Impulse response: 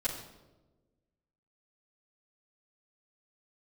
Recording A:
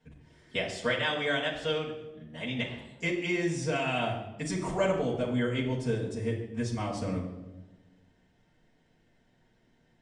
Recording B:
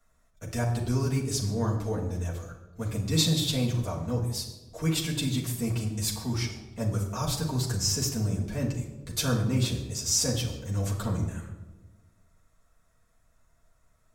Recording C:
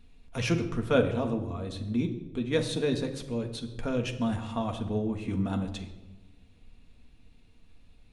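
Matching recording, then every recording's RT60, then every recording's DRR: A; 1.2, 1.2, 1.2 s; -9.0, -5.0, 2.5 dB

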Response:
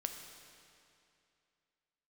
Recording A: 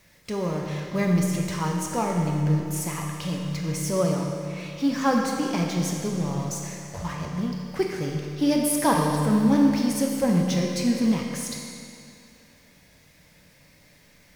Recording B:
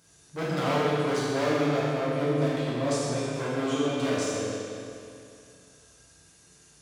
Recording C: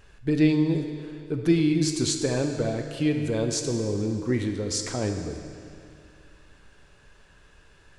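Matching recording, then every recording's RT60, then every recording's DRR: C; 2.6, 2.6, 2.6 s; 0.0, -9.0, 4.5 dB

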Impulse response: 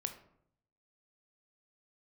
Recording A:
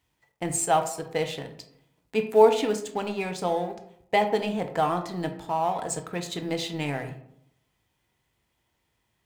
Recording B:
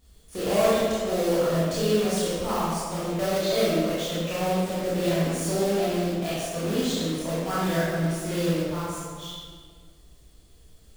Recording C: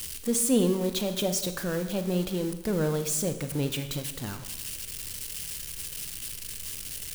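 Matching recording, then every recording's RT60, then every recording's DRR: A; 0.70, 1.7, 1.0 s; 6.5, -9.5, 8.0 dB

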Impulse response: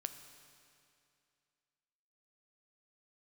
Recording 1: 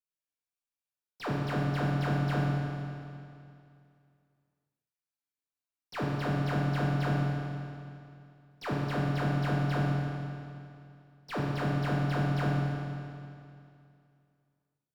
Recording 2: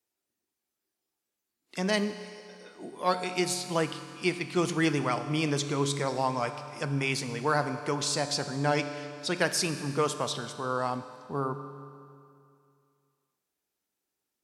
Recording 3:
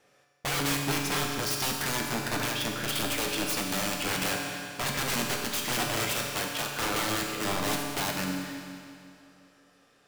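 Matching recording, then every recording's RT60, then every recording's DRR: 2; 2.5, 2.5, 2.5 s; -5.5, 8.5, 0.5 dB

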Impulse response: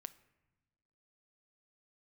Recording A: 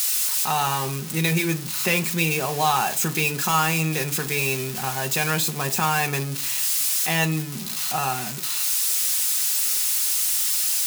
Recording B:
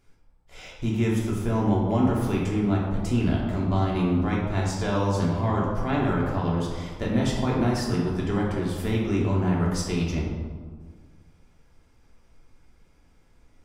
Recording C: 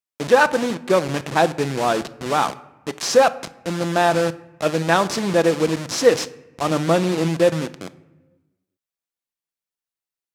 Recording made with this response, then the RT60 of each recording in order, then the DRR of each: C; 0.40 s, 1.7 s, not exponential; 5.0, -4.5, 12.0 dB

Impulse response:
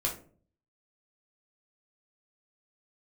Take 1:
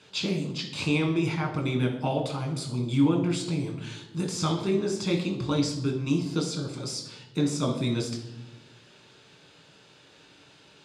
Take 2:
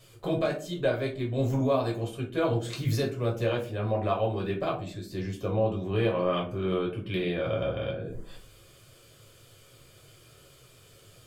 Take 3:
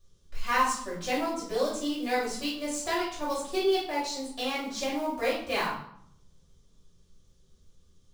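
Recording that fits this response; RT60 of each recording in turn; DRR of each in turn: 2; 1.0, 0.45, 0.65 s; 1.0, -2.5, -8.5 dB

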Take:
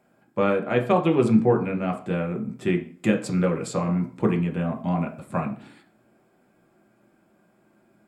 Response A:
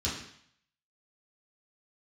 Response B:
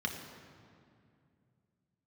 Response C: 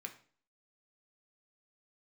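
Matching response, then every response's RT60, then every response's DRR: C; 0.65, 2.4, 0.45 s; -9.5, 1.5, 3.5 dB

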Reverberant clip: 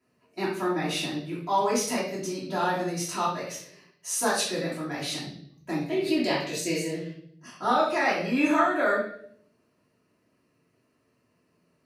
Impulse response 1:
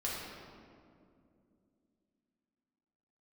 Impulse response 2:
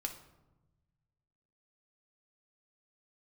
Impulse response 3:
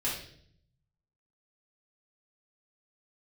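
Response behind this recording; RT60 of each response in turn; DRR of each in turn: 3; 2.5, 1.1, 0.60 s; -6.5, 3.5, -8.5 dB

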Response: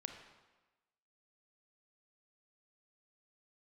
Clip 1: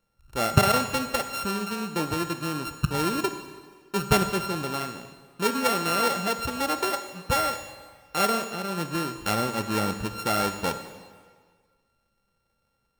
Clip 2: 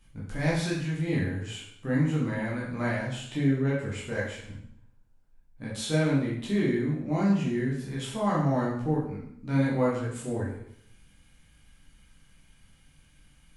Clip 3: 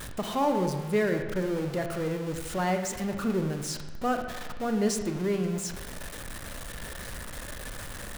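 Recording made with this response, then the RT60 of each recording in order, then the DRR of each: 3; 1.7, 0.70, 1.2 s; 8.5, -6.5, 5.0 dB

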